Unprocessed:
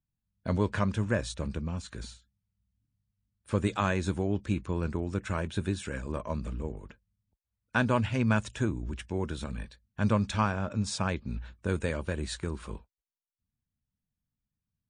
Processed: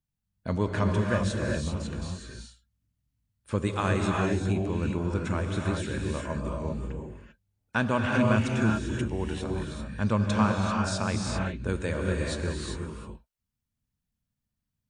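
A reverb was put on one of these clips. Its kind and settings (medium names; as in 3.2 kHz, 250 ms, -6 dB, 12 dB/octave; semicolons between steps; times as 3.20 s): gated-style reverb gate 420 ms rising, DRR 0 dB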